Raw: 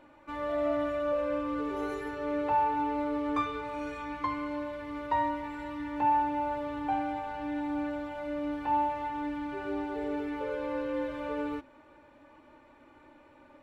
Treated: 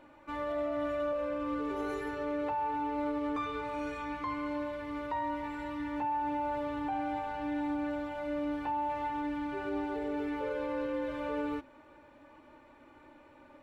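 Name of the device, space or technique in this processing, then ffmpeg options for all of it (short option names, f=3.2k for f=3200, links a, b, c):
stacked limiters: -af "alimiter=limit=-22.5dB:level=0:latency=1:release=238,alimiter=level_in=3dB:limit=-24dB:level=0:latency=1:release=17,volume=-3dB"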